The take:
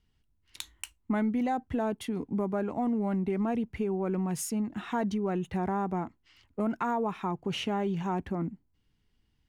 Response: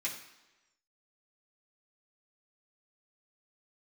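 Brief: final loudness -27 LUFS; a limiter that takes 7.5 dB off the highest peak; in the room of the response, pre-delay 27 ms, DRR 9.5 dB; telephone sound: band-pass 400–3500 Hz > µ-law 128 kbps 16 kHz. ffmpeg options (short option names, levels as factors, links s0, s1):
-filter_complex "[0:a]alimiter=level_in=1.19:limit=0.0631:level=0:latency=1,volume=0.841,asplit=2[s0][s1];[1:a]atrim=start_sample=2205,adelay=27[s2];[s1][s2]afir=irnorm=-1:irlink=0,volume=0.237[s3];[s0][s3]amix=inputs=2:normalize=0,highpass=400,lowpass=3500,volume=3.76" -ar 16000 -c:a pcm_mulaw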